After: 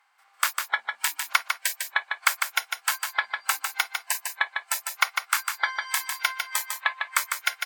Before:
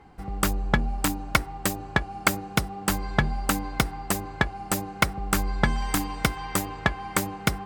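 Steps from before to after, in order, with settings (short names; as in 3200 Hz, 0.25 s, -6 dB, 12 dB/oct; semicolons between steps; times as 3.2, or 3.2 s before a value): per-bin compression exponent 0.6; spectral noise reduction 23 dB; 0.72–1.33 upward compressor, threshold -26 dBFS; HPF 930 Hz 24 dB/oct; on a send: echo 0.151 s -5.5 dB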